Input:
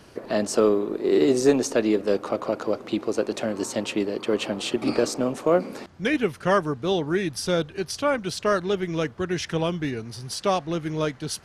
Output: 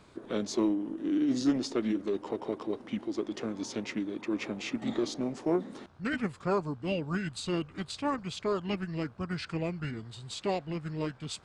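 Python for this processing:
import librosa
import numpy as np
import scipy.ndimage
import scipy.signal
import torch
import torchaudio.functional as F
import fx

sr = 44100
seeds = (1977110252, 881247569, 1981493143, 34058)

y = fx.formant_shift(x, sr, semitones=-4)
y = fx.dmg_buzz(y, sr, base_hz=60.0, harmonics=27, level_db=-59.0, tilt_db=0, odd_only=False)
y = F.gain(torch.from_numpy(y), -8.0).numpy()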